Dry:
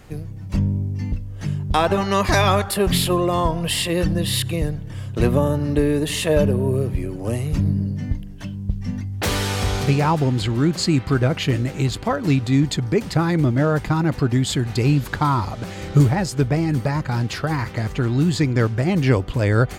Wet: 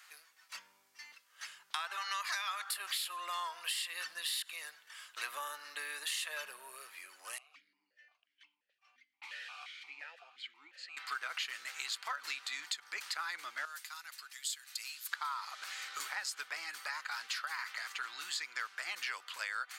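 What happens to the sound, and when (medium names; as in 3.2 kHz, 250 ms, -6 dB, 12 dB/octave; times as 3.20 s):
7.38–10.97 s: stepped vowel filter 5.7 Hz
13.65–15.12 s: pre-emphasis filter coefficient 0.9
whole clip: Chebyshev high-pass 1.3 kHz, order 3; peaking EQ 4.3 kHz +3 dB 0.32 oct; compression 6:1, threshold -31 dBFS; trim -4 dB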